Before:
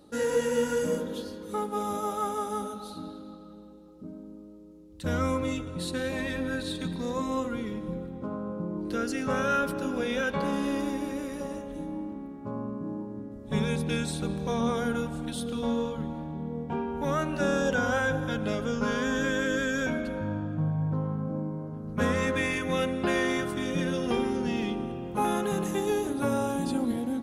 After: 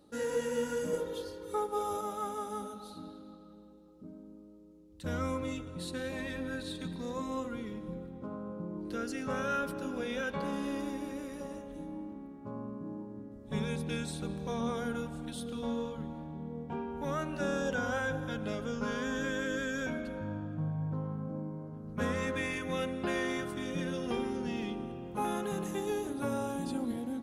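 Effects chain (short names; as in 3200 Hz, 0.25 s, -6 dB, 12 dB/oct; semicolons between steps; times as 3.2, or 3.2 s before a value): 0.93–2.01 comb 2.2 ms, depth 99%; gain -6.5 dB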